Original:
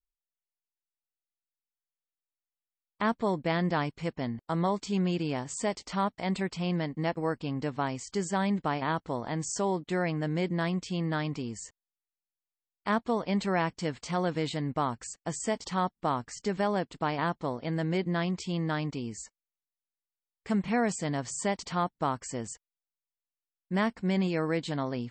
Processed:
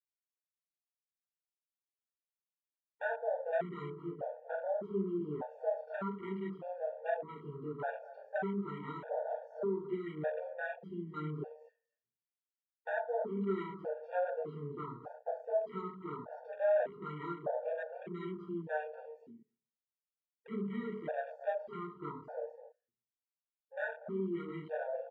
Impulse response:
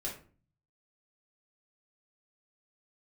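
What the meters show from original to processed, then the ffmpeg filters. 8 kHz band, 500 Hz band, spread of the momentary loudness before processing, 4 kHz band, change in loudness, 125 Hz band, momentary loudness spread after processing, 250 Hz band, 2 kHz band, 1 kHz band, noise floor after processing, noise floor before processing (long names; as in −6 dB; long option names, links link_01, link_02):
below −40 dB, −3.0 dB, 6 LU, below −20 dB, −8.0 dB, −14.0 dB, 9 LU, −11.5 dB, −8.0 dB, −10.5 dB, below −85 dBFS, below −85 dBFS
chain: -filter_complex "[0:a]bandreject=frequency=2100:width=18,acompressor=threshold=-35dB:ratio=2,asplit=2[link_01][link_02];[link_02]adelay=26,volume=-12dB[link_03];[link_01][link_03]amix=inputs=2:normalize=0,aecho=1:1:236:0.211,flanger=delay=4.4:depth=2.5:regen=-26:speed=0.83:shape=sinusoidal,highpass=270,equalizer=frequency=310:width_type=q:width=4:gain=-6,equalizer=frequency=450:width_type=q:width=4:gain=6,equalizer=frequency=660:width_type=q:width=4:gain=9,equalizer=frequency=1100:width_type=q:width=4:gain=-9,equalizer=frequency=1500:width_type=q:width=4:gain=10,equalizer=frequency=2200:width_type=q:width=4:gain=-4,lowpass=frequency=2800:width=0.5412,lowpass=frequency=2800:width=1.3066[link_04];[1:a]atrim=start_sample=2205[link_05];[link_04][link_05]afir=irnorm=-1:irlink=0,asoftclip=type=tanh:threshold=-19.5dB,equalizer=frequency=650:width_type=o:width=0.38:gain=-2,afwtdn=0.00562,afftfilt=real='re*gt(sin(2*PI*0.83*pts/sr)*(1-2*mod(floor(b*sr/1024/470),2)),0)':imag='im*gt(sin(2*PI*0.83*pts/sr)*(1-2*mod(floor(b*sr/1024/470),2)),0)':win_size=1024:overlap=0.75,volume=1dB"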